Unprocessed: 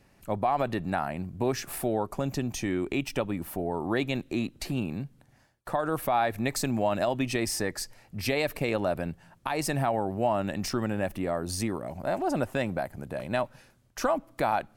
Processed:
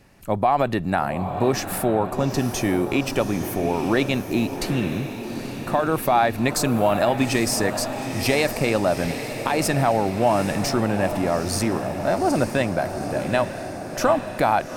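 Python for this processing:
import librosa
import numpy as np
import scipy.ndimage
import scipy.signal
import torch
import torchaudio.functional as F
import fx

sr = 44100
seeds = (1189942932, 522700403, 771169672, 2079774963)

y = fx.echo_diffused(x, sr, ms=836, feedback_pct=61, wet_db=-9)
y = y * librosa.db_to_amplitude(7.0)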